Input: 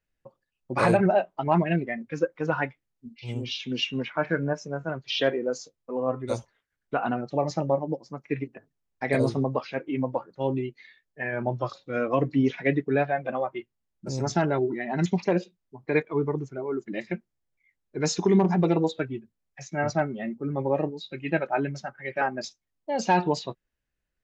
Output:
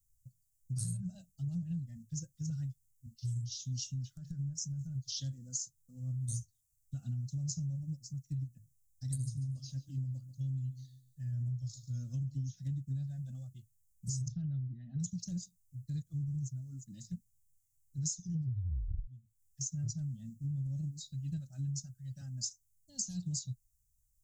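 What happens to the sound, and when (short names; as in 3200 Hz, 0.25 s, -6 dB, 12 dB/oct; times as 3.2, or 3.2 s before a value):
3.92–5.1 compressor, threshold -28 dBFS
9.22–12.44 feedback echo 0.14 s, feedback 34%, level -16.5 dB
14.28–15 LPF 3000 Hz 24 dB/oct
18.22 tape stop 0.85 s
whole clip: elliptic band-stop 120–7000 Hz, stop band 50 dB; high shelf 2500 Hz +7.5 dB; compressor 16:1, threshold -42 dBFS; gain +8.5 dB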